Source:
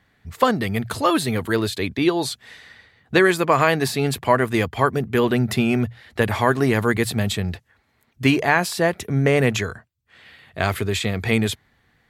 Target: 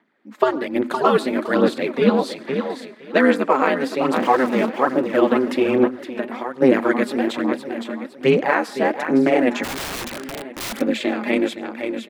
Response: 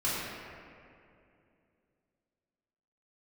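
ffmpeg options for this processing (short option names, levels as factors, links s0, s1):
-filter_complex "[0:a]asettb=1/sr,asplit=3[s0][s1][s2];[s0]atrim=end=4.164[s3];[s1]atrim=start=4.16:end=4.7,asetpts=PTS-STARTPTS,afade=t=in:d=0.004:c=qsin,afade=t=out:st=0.536:d=0.004:c=qsin,aeval=exprs='val(0)+0.5*0.112*sgn(val(0))':c=same[s4];[s2]atrim=start=4.696[s5];[s3][s4]acrossfade=d=0.004:c1=hsin:c2=qsin[s6];[s6][s5]acrossfade=d=0.004:c1=qsin:c2=hsin,aecho=1:1:513|1026|1539|2052:0.299|0.119|0.0478|0.0191,asettb=1/sr,asplit=3[s7][s8][s9];[s7]atrim=end=5.874[s10];[s8]atrim=start=5.87:end=6.62,asetpts=PTS-STARTPTS,afade=t=in:d=0.004:c=qsin,afade=t=out:st=0.746:d=0.004:c=qsin,acompressor=threshold=0.0316:ratio=4[s11];[s9]atrim=start=6.616[s12];[s10][s11]acrossfade=d=0.004:c1=hsin:c2=qsin[s13];[s13][s12]acrossfade=d=0.004:c1=qsin:c2=hsin,lowpass=f=1400:p=1,dynaudnorm=f=170:g=3:m=2.82,asplit=2[s14][s15];[1:a]atrim=start_sample=2205,atrim=end_sample=3528,adelay=92[s16];[s15][s16]afir=irnorm=-1:irlink=0,volume=0.0501[s17];[s14][s17]amix=inputs=2:normalize=0,aeval=exprs='val(0)*sin(2*PI*130*n/s)':c=same,aphaser=in_gain=1:out_gain=1:delay=4.9:decay=0.46:speed=1.2:type=sinusoidal,highpass=f=210:w=0.5412,highpass=f=210:w=1.3066,asplit=3[s18][s19][s20];[s18]afade=t=out:st=9.63:d=0.02[s21];[s19]aeval=exprs='(mod(15*val(0)+1,2)-1)/15':c=same,afade=t=in:st=9.63:d=0.02,afade=t=out:st=10.8:d=0.02[s22];[s20]afade=t=in:st=10.8:d=0.02[s23];[s21][s22][s23]amix=inputs=3:normalize=0"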